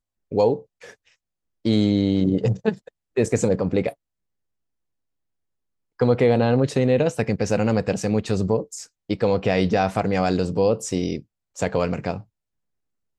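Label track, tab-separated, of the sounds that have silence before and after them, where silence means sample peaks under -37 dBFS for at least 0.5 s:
1.650000	3.920000	sound
6.000000	12.210000	sound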